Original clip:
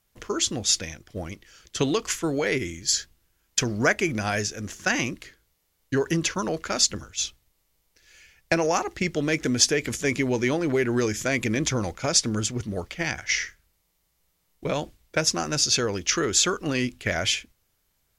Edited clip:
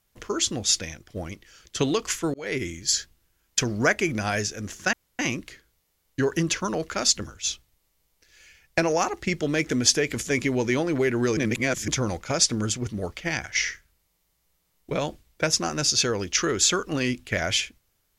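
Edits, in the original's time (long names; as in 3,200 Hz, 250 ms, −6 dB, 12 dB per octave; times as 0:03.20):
0:02.34–0:02.62: fade in
0:04.93: splice in room tone 0.26 s
0:11.11–0:11.62: reverse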